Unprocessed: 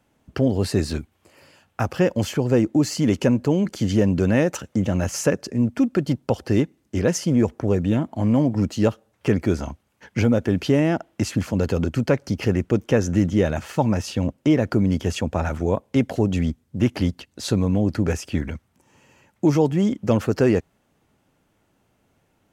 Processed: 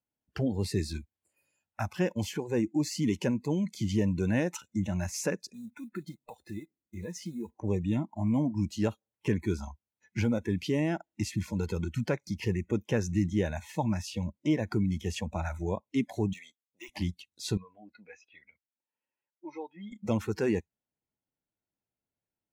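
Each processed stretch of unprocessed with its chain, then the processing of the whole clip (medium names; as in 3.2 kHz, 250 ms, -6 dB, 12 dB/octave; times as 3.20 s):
5.54–7.56 s: block-companded coder 5-bit + treble shelf 4.1 kHz -8.5 dB + compression 2:1, threshold -29 dBFS
16.33–16.89 s: de-esser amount 100% + high-pass 680 Hz
17.57–19.92 s: high-pass 800 Hz 6 dB/octave + distance through air 230 m + flange 1.1 Hz, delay 1.3 ms, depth 3.1 ms, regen -43%
whole clip: dynamic bell 530 Hz, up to -4 dB, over -30 dBFS, Q 1.5; band-stop 1.2 kHz, Q 7.7; spectral noise reduction 22 dB; trim -7.5 dB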